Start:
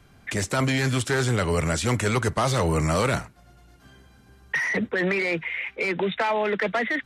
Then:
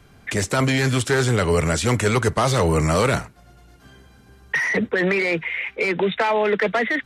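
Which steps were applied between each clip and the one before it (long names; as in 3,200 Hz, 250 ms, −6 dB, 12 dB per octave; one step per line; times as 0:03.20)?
parametric band 440 Hz +3.5 dB 0.26 octaves
level +3.5 dB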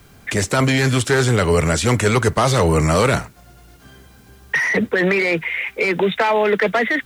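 bit-depth reduction 10 bits, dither triangular
level +3 dB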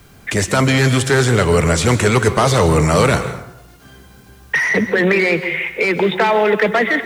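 dense smooth reverb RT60 0.79 s, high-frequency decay 0.6×, pre-delay 115 ms, DRR 10.5 dB
level +2 dB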